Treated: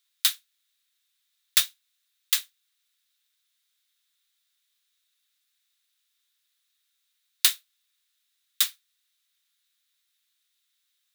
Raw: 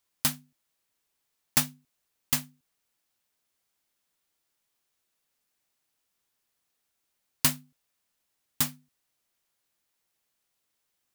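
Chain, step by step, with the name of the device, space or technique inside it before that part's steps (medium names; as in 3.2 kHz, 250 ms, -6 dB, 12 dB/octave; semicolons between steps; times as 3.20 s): headphones lying on a table (high-pass 1.4 kHz 24 dB/octave; peaking EQ 3.7 kHz +11.5 dB 0.32 oct); trim +2.5 dB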